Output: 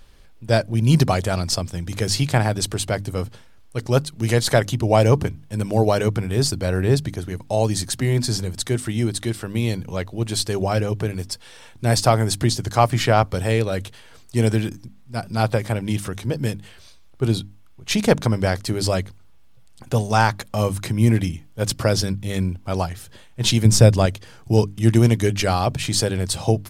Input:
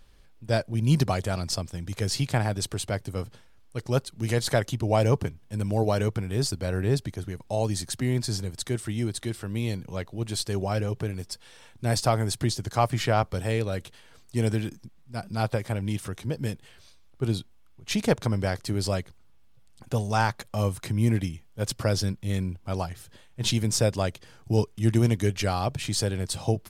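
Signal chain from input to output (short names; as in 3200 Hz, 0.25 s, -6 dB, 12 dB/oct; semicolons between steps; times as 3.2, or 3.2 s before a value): notches 50/100/150/200/250/300 Hz; 23.65–24.06 low shelf 200 Hz +10.5 dB; gain +7 dB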